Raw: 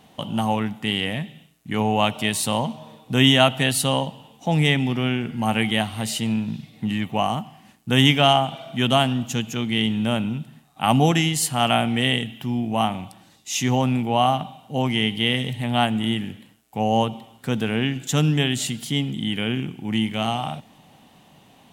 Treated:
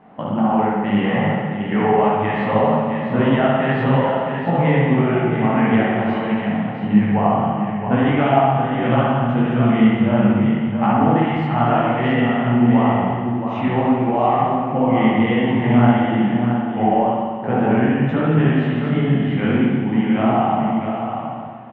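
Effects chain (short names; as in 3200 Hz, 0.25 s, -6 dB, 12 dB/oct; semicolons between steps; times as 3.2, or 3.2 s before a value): LPF 1800 Hz 24 dB/oct; low shelf 71 Hz -9.5 dB; notches 50/100/150 Hz; compressor, threshold -23 dBFS, peak gain reduction 10.5 dB; echo 0.669 s -7 dB; spring tank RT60 1.8 s, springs 58 ms, chirp 20 ms, DRR -4 dB; detuned doubles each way 54 cents; gain +9 dB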